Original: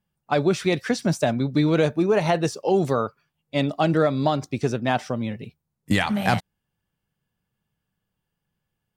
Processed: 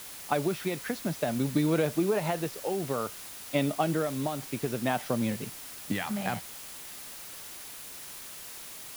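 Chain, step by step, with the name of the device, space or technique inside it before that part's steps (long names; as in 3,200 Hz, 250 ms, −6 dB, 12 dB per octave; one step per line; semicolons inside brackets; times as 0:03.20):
medium wave at night (band-pass filter 120–3,800 Hz; downward compressor, threshold −22 dBFS, peak gain reduction 7.5 dB; amplitude tremolo 0.57 Hz, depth 50%; steady tone 10,000 Hz −52 dBFS; white noise bed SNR 12 dB)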